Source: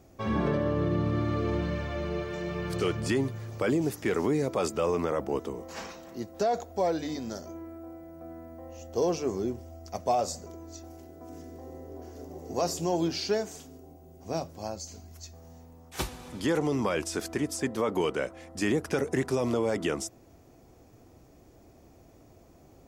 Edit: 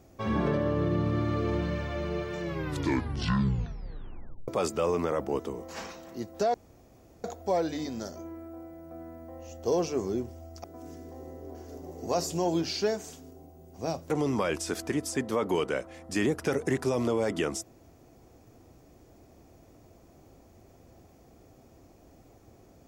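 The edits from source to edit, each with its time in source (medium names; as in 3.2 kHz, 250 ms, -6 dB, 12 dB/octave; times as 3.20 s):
2.41 s: tape stop 2.07 s
6.54 s: insert room tone 0.70 s
9.94–11.11 s: delete
14.57–16.56 s: delete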